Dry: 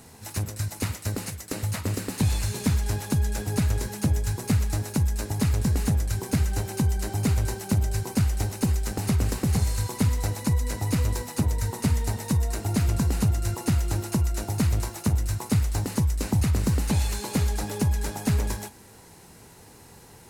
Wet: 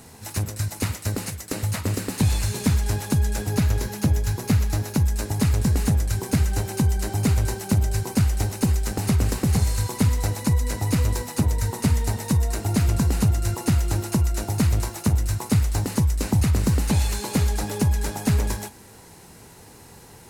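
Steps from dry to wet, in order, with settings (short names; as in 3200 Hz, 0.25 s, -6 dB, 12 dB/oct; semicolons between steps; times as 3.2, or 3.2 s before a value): 3.49–5.05 bell 8500 Hz -7 dB 0.27 oct; gain +3 dB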